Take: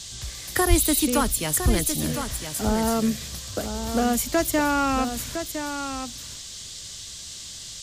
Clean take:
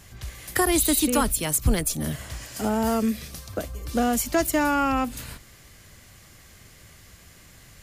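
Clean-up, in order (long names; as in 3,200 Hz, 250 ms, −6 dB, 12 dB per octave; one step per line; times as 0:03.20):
high-pass at the plosives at 0:00.69
noise reduction from a noise print 12 dB
echo removal 1,009 ms −8.5 dB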